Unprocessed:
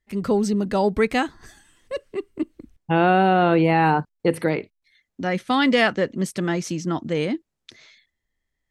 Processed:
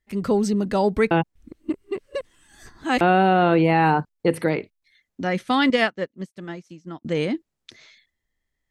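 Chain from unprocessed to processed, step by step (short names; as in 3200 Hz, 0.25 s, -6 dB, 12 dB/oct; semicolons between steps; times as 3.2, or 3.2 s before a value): 1.11–3.01 reverse; 5.7–7.05 upward expander 2.5:1, over -38 dBFS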